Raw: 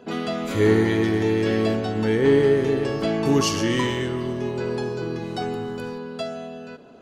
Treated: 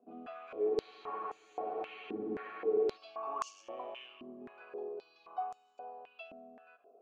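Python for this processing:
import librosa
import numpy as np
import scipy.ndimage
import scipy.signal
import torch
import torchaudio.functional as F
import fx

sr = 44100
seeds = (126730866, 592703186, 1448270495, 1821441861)

y = fx.vowel_filter(x, sr, vowel='a')
y = fx.spec_freeze(y, sr, seeds[0], at_s=0.72, hold_s=2.25)
y = fx.filter_held_bandpass(y, sr, hz=3.8, low_hz=260.0, high_hz=7000.0)
y = F.gain(torch.from_numpy(y), 5.5).numpy()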